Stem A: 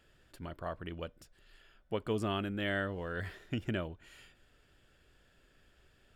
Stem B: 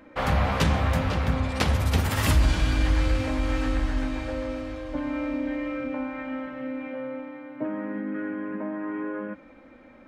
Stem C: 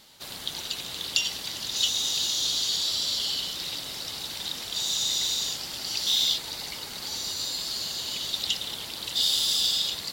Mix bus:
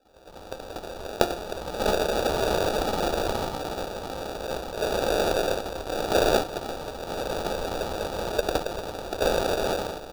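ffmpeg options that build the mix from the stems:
-filter_complex "[0:a]volume=0.282[s0];[1:a]highpass=f=170:w=0.5412,highpass=f=170:w=1.3066,acompressor=threshold=0.0126:ratio=6,volume=0.168[s1];[2:a]adynamicequalizer=threshold=0.01:dfrequency=7300:dqfactor=0.7:tfrequency=7300:tqfactor=0.7:attack=5:release=100:ratio=0.375:range=2:mode=boostabove:tftype=highshelf,adelay=50,volume=0.531[s2];[s0][s1][s2]amix=inputs=3:normalize=0,dynaudnorm=f=310:g=7:m=2.24,acrusher=samples=42:mix=1:aa=0.000001,equalizer=f=125:t=o:w=1:g=-9,equalizer=f=250:t=o:w=1:g=-6,equalizer=f=500:t=o:w=1:g=3,equalizer=f=1000:t=o:w=1:g=10,equalizer=f=2000:t=o:w=1:g=-9,equalizer=f=4000:t=o:w=1:g=7,equalizer=f=8000:t=o:w=1:g=-3"

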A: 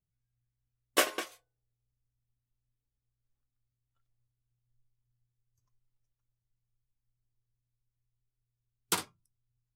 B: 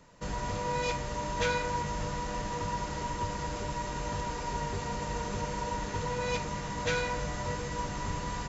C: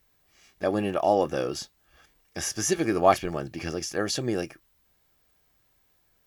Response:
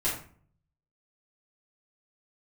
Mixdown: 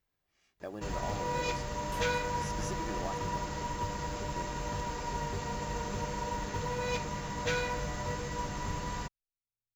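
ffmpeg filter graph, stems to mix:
-filter_complex "[0:a]alimiter=limit=0.1:level=0:latency=1,asplit=2[s0][s1];[s1]adelay=2.8,afreqshift=0.5[s2];[s0][s2]amix=inputs=2:normalize=1,adelay=950,volume=0.224[s3];[1:a]adelay=600,volume=0.841[s4];[2:a]equalizer=f=14000:t=o:w=1.4:g=-8.5,acompressor=threshold=0.0631:ratio=6,volume=0.224,asplit=3[s5][s6][s7];[s5]atrim=end=3.52,asetpts=PTS-STARTPTS,afade=t=out:st=3.516:d=0.004:c=hsin[s8];[s6]atrim=start=3.52:end=4.36,asetpts=PTS-STARTPTS,volume=0[s9];[s7]atrim=start=4.36,asetpts=PTS-STARTPTS,afade=t=in:d=0.004:c=hsin[s10];[s8][s9][s10]concat=n=3:v=0:a=1[s11];[s3][s4][s11]amix=inputs=3:normalize=0,acrusher=bits=8:mode=log:mix=0:aa=0.000001"

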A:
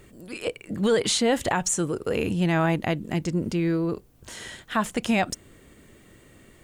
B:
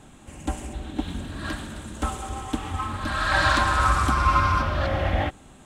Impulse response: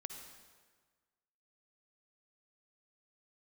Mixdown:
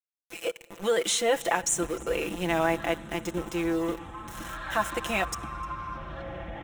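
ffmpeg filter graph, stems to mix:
-filter_complex "[0:a]highpass=390,aeval=exprs='val(0)*gte(abs(val(0)),0.0188)':c=same,volume=0.708,asplit=3[s0][s1][s2];[s1]volume=0.158[s3];[s2]volume=0.0668[s4];[1:a]acompressor=threshold=0.0282:ratio=2.5,highshelf=f=4200:g=-9.5,adelay=1350,volume=0.473[s5];[2:a]atrim=start_sample=2205[s6];[s3][s6]afir=irnorm=-1:irlink=0[s7];[s4]aecho=0:1:305:1[s8];[s0][s5][s7][s8]amix=inputs=4:normalize=0,equalizer=f=4600:w=7.4:g=-14.5,aecho=1:1:5.9:0.66"

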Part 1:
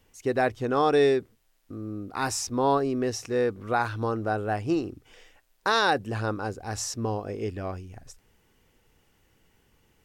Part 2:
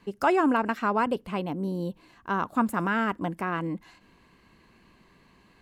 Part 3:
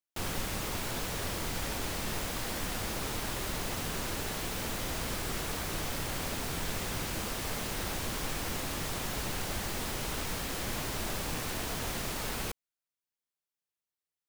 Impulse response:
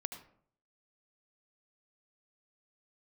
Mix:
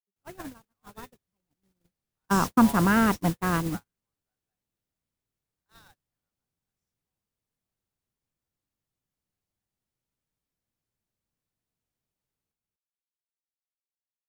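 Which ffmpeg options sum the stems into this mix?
-filter_complex "[0:a]highpass=1000,volume=0.398[s0];[1:a]highpass=f=43:w=0.5412,highpass=f=43:w=1.3066,dynaudnorm=f=140:g=17:m=1.58,volume=0.794,afade=t=in:st=1.94:d=0.22:silence=0.421697[s1];[2:a]highshelf=f=5500:g=7.5,volume=0.596,asplit=2[s2][s3];[s3]volume=0.562,aecho=0:1:243:1[s4];[s0][s1][s2][s4]amix=inputs=4:normalize=0,agate=range=0.00178:threshold=0.0501:ratio=16:detection=peak,equalizer=f=130:w=0.6:g=8"

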